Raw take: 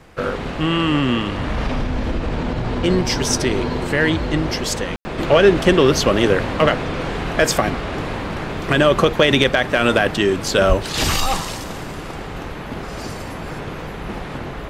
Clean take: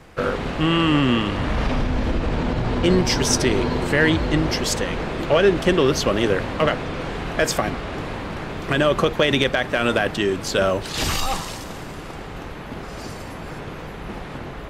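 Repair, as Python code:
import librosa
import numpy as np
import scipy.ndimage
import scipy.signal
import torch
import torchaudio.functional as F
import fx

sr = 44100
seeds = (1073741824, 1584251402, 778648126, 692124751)

y = fx.fix_deplosive(x, sr, at_s=(10.68,))
y = fx.fix_ambience(y, sr, seeds[0], print_start_s=0.0, print_end_s=0.5, start_s=4.96, end_s=5.05)
y = fx.gain(y, sr, db=fx.steps((0.0, 0.0), (5.18, -4.0)))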